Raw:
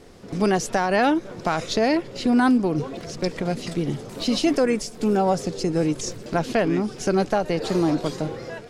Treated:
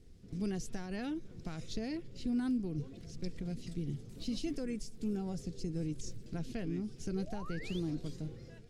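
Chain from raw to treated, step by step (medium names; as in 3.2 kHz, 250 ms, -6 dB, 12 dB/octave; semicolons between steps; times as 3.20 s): amplifier tone stack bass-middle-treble 10-0-1; painted sound rise, 7.15–7.80 s, 410–3700 Hz -53 dBFS; band-stop 580 Hz, Q 12; trim +3.5 dB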